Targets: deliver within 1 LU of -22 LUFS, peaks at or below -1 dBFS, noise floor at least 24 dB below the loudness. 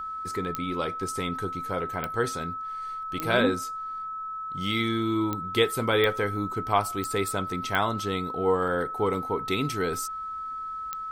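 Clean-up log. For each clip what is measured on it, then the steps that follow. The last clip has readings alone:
clicks found 8; steady tone 1.3 kHz; tone level -32 dBFS; loudness -28.0 LUFS; peak level -9.5 dBFS; loudness target -22.0 LUFS
-> de-click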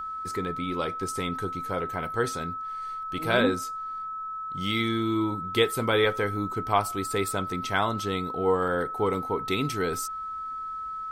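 clicks found 0; steady tone 1.3 kHz; tone level -32 dBFS
-> band-stop 1.3 kHz, Q 30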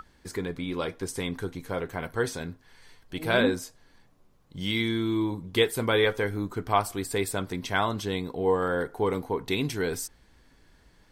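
steady tone not found; loudness -28.5 LUFS; peak level -9.0 dBFS; loudness target -22.0 LUFS
-> trim +6.5 dB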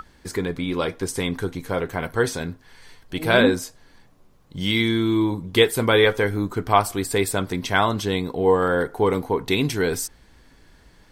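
loudness -22.0 LUFS; peak level -2.5 dBFS; noise floor -54 dBFS

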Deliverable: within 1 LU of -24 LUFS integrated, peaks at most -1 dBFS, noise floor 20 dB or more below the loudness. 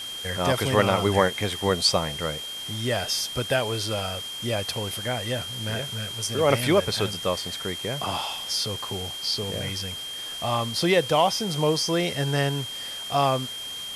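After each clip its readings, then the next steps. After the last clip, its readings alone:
steady tone 3.2 kHz; tone level -33 dBFS; noise floor -35 dBFS; noise floor target -46 dBFS; loudness -25.5 LUFS; peak level -4.0 dBFS; loudness target -24.0 LUFS
-> band-stop 3.2 kHz, Q 30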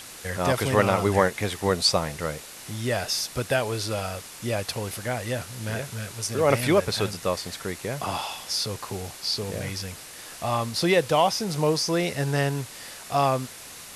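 steady tone not found; noise floor -43 dBFS; noise floor target -46 dBFS
-> noise reduction 6 dB, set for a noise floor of -43 dBFS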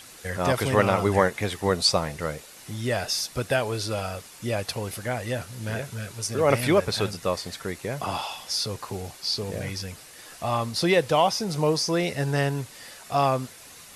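noise floor -47 dBFS; loudness -26.0 LUFS; peak level -4.0 dBFS; loudness target -24.0 LUFS
-> trim +2 dB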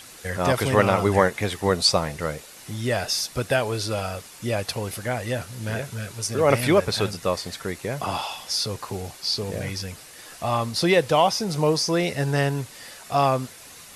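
loudness -24.0 LUFS; peak level -2.0 dBFS; noise floor -45 dBFS

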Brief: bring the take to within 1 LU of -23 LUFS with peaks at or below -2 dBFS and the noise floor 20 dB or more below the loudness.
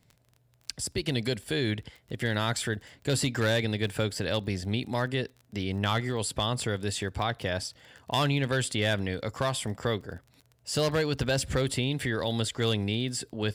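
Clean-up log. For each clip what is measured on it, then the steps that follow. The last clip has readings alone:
tick rate 25 per s; loudness -29.5 LUFS; peak level -13.5 dBFS; loudness target -23.0 LUFS
-> de-click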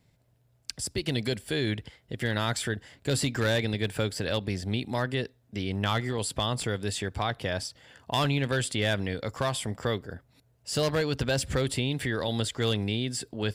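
tick rate 0 per s; loudness -29.5 LUFS; peak level -13.5 dBFS; loudness target -23.0 LUFS
-> trim +6.5 dB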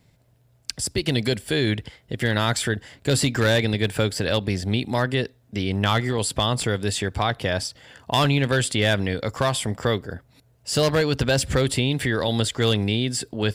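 loudness -23.0 LUFS; peak level -7.0 dBFS; noise floor -60 dBFS

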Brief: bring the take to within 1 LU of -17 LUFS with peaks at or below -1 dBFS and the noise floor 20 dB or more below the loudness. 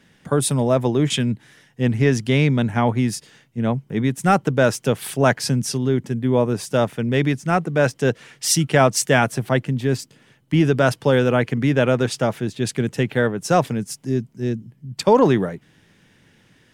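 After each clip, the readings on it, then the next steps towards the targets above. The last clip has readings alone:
loudness -20.0 LUFS; peak level -1.5 dBFS; loudness target -17.0 LUFS
-> trim +3 dB; peak limiter -1 dBFS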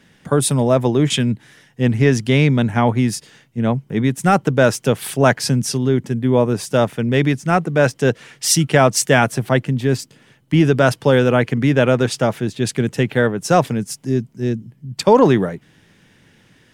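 loudness -17.0 LUFS; peak level -1.0 dBFS; noise floor -54 dBFS

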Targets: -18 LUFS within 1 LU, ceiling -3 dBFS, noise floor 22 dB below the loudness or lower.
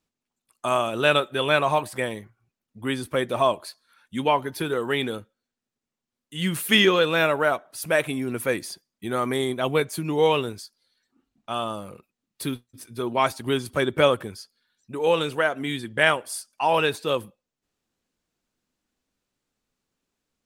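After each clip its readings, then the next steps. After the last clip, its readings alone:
loudness -24.0 LUFS; peak level -4.0 dBFS; loudness target -18.0 LUFS
-> trim +6 dB; peak limiter -3 dBFS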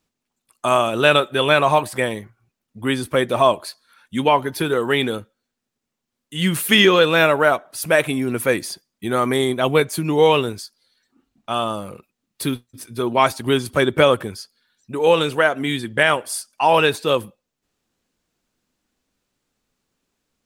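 loudness -18.5 LUFS; peak level -3.0 dBFS; noise floor -81 dBFS

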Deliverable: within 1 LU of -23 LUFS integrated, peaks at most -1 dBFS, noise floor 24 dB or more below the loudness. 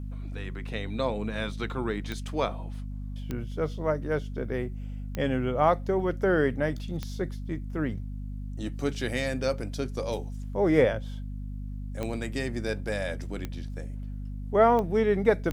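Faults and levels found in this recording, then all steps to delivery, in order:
clicks found 8; hum 50 Hz; highest harmonic 250 Hz; hum level -33 dBFS; loudness -29.5 LUFS; peak level -8.5 dBFS; loudness target -23.0 LUFS
-> de-click; de-hum 50 Hz, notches 5; trim +6.5 dB

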